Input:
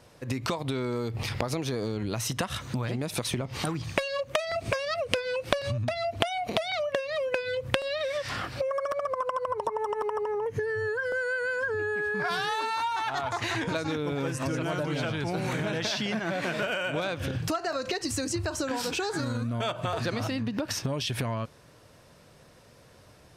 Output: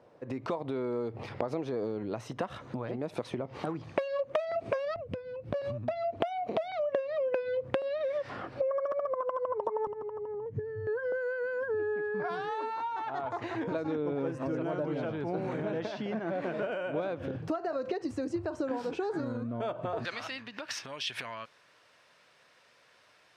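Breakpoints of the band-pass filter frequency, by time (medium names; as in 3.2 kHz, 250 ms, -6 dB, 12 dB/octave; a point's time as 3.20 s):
band-pass filter, Q 0.83
510 Hz
from 4.96 s 140 Hz
from 5.54 s 450 Hz
from 9.87 s 150 Hz
from 10.87 s 420 Hz
from 20.05 s 2.2 kHz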